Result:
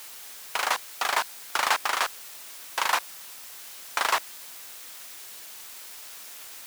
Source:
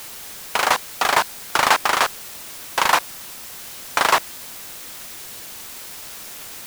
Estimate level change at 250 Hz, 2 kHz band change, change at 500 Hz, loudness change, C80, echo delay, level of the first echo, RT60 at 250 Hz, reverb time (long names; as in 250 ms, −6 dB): −14.5 dB, −7.0 dB, −10.5 dB, −10.5 dB, no reverb audible, no echo audible, no echo audible, no reverb audible, no reverb audible